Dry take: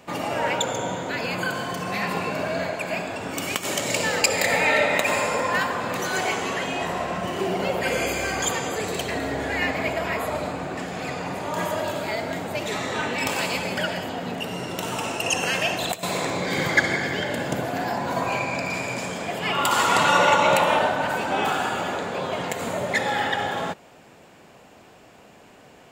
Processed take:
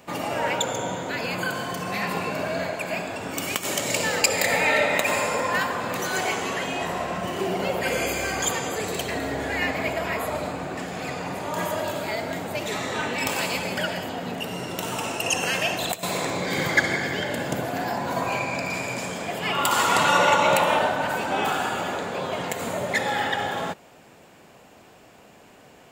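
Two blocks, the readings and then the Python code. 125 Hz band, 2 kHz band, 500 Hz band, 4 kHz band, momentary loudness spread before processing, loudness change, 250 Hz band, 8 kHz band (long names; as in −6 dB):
−1.0 dB, −1.0 dB, −1.0 dB, −0.5 dB, 10 LU, −1.0 dB, −1.0 dB, +0.5 dB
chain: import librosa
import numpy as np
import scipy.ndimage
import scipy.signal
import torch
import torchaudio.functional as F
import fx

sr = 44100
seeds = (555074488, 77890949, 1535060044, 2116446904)

y = fx.high_shelf(x, sr, hz=11000.0, db=6.5)
y = F.gain(torch.from_numpy(y), -1.0).numpy()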